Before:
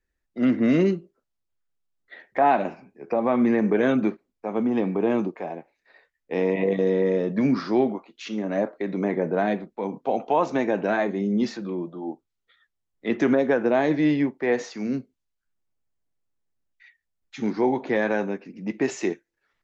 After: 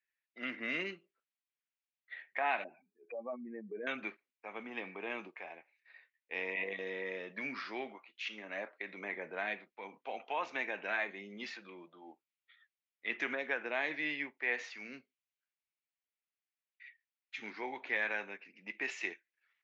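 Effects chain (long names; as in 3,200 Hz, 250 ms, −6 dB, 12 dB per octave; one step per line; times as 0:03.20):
0:02.64–0:03.87: expanding power law on the bin magnitudes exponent 2.3
resonant band-pass 2,400 Hz, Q 2.3
level +1 dB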